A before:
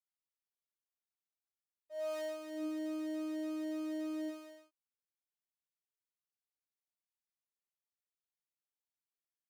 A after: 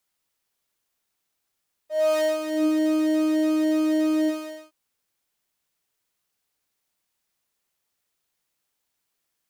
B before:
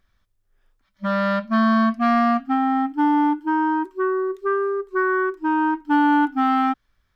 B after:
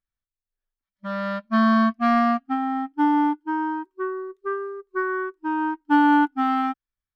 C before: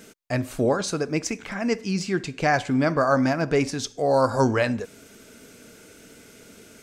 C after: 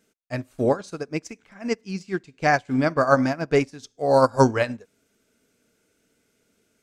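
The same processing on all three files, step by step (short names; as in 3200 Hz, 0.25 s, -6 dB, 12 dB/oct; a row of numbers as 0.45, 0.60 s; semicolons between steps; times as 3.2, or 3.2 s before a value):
upward expander 2.5:1, over -33 dBFS; match loudness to -23 LUFS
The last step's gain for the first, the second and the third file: +17.0, +1.5, +5.5 dB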